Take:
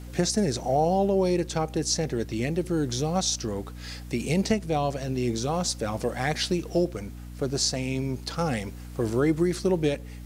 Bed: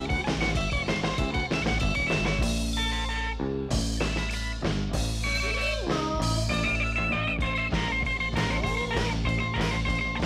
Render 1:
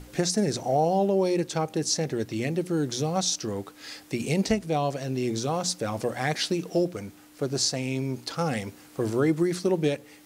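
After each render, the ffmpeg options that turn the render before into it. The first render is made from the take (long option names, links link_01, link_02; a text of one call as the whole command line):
ffmpeg -i in.wav -af "bandreject=frequency=60:width_type=h:width=6,bandreject=frequency=120:width_type=h:width=6,bandreject=frequency=180:width_type=h:width=6,bandreject=frequency=240:width_type=h:width=6" out.wav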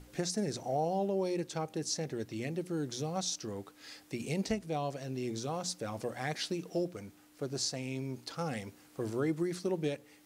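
ffmpeg -i in.wav -af "volume=-9dB" out.wav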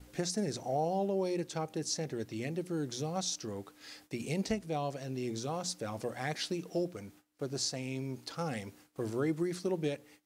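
ffmpeg -i in.wav -af "agate=range=-19dB:threshold=-57dB:ratio=16:detection=peak" out.wav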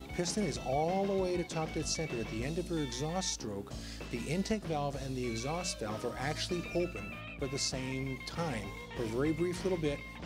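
ffmpeg -i in.wav -i bed.wav -filter_complex "[1:a]volume=-17dB[link_01];[0:a][link_01]amix=inputs=2:normalize=0" out.wav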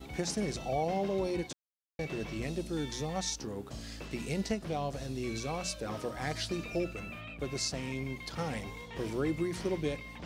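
ffmpeg -i in.wav -filter_complex "[0:a]asplit=3[link_01][link_02][link_03];[link_01]atrim=end=1.53,asetpts=PTS-STARTPTS,afade=type=out:start_time=1.526:duration=0.004:curve=hsin[link_04];[link_02]atrim=start=1.53:end=1.99,asetpts=PTS-STARTPTS,volume=0[link_05];[link_03]atrim=start=1.99,asetpts=PTS-STARTPTS,afade=type=in:duration=0.004:curve=hsin[link_06];[link_04][link_05][link_06]concat=n=3:v=0:a=1" out.wav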